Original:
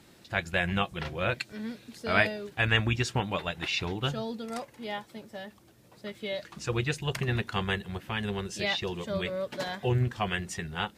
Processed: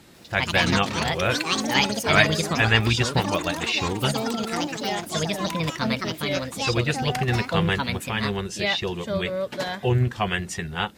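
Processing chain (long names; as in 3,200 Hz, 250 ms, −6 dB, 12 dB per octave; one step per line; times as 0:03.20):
delay with pitch and tempo change per echo 145 ms, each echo +5 semitones, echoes 3
level +5.5 dB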